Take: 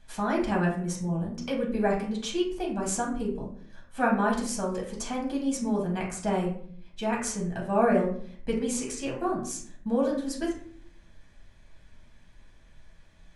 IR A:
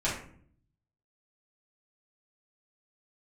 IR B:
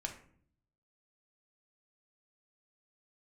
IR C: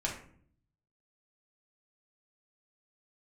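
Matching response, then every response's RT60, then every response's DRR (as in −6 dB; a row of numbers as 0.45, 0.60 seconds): C; 0.55, 0.55, 0.55 seconds; −9.0, 2.5, −3.0 decibels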